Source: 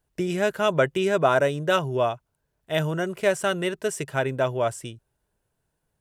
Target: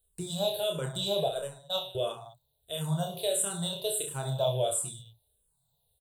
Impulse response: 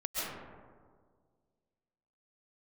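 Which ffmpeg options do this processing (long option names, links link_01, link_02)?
-filter_complex "[0:a]asettb=1/sr,asplit=3[link_01][link_02][link_03];[link_01]atrim=end=1.284[link_04];[link_02]atrim=start=1.28:end=1.95,asetpts=PTS-STARTPTS,afade=type=in:duration=0.004:curve=qsin,afade=type=out:start_time=0.666:duration=0.004:curve=qsin,agate=range=-31dB:threshold=-18dB:ratio=16:detection=peak[link_05];[link_03]atrim=start=1.946[link_06];[link_04][link_05]acrossfade=duration=0.004:curve1=hsin:curve2=qsin[link_07];[link_07][link_06]acrossfade=duration=0.004:curve1=qsin:curve2=hsin,firequalizer=gain_entry='entry(150,0);entry(250,-20);entry(450,-5);entry(740,-1);entry(1400,-15);entry(2000,-21);entry(3800,15);entry(5400,-14);entry(8200,10)':delay=0.05:min_phase=1,alimiter=limit=-19dB:level=0:latency=1:release=38,aecho=1:1:30|64.5|104.2|149.8|202.3:0.631|0.398|0.251|0.158|0.1,asplit=2[link_08][link_09];[link_09]afreqshift=-1.5[link_10];[link_08][link_10]amix=inputs=2:normalize=1"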